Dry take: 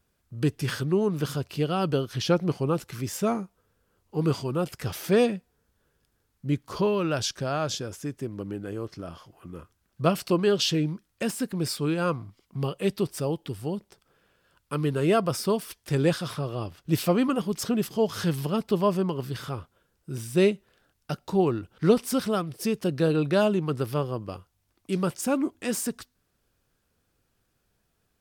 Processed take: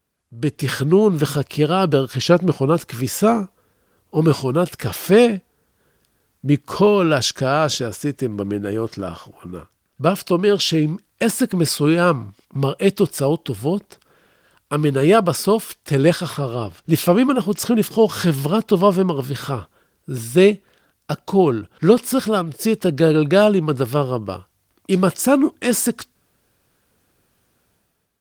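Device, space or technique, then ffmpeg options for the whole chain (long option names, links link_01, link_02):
video call: -af "highpass=frequency=110:poles=1,dynaudnorm=framelen=120:gausssize=9:maxgain=12dB" -ar 48000 -c:a libopus -b:a 24k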